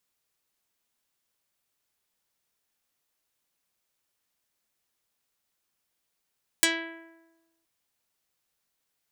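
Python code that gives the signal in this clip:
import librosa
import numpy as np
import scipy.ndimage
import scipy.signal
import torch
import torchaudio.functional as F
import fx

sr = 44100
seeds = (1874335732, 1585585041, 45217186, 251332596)

y = fx.pluck(sr, length_s=1.02, note=64, decay_s=1.14, pick=0.26, brightness='dark')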